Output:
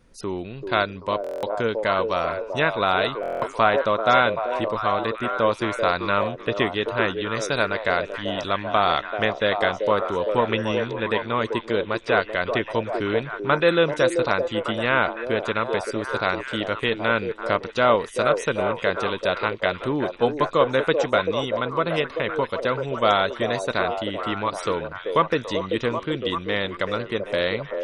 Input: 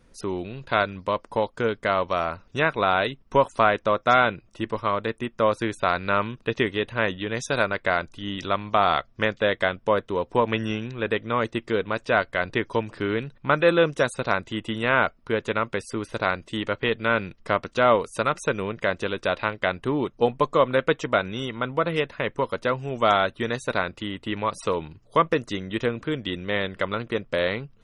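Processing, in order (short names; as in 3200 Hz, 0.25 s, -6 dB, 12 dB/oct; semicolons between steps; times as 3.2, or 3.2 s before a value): delay with a stepping band-pass 0.387 s, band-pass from 450 Hz, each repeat 0.7 oct, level -2.5 dB; dynamic EQ 4300 Hz, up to +5 dB, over -45 dBFS, Q 1.6; stuck buffer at 1.22/3.21, samples 1024, times 8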